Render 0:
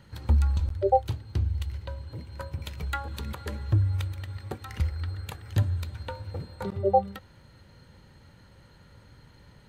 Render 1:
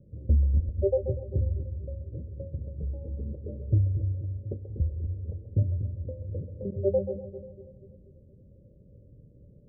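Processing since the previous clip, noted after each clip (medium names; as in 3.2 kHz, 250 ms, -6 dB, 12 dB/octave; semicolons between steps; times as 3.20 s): Chebyshev low-pass 590 Hz, order 6; two-band feedback delay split 430 Hz, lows 242 ms, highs 133 ms, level -9 dB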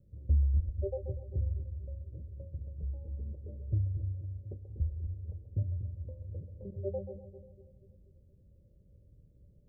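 graphic EQ 125/250/500 Hz -6/-8/-9 dB; trim -2 dB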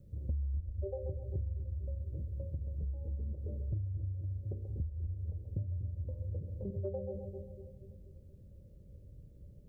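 de-hum 57.53 Hz, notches 11; compression 5:1, threshold -42 dBFS, peak gain reduction 17.5 dB; trim +7 dB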